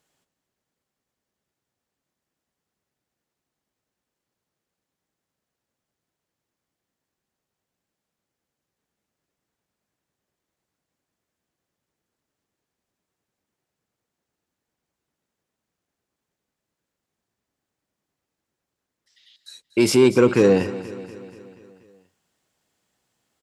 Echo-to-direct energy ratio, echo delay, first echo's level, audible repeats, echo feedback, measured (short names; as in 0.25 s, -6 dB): -13.5 dB, 0.24 s, -15.5 dB, 5, 58%